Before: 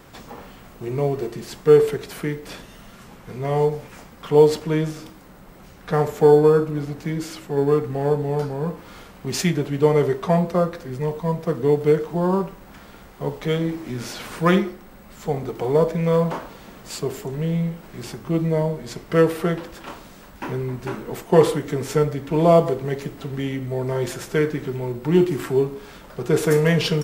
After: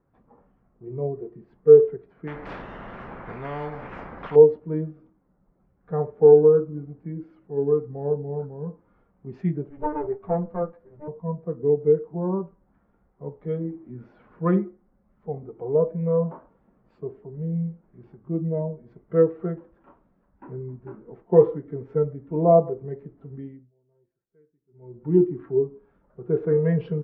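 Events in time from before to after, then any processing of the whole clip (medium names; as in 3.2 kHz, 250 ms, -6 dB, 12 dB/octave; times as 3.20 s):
2.27–4.36 s: spectrum-flattening compressor 4:1
9.69–11.08 s: comb filter that takes the minimum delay 10 ms
23.35–25.05 s: dip -24 dB, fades 0.37 s
whole clip: low-pass 1.7 kHz 12 dB/octave; spectral contrast expander 1.5:1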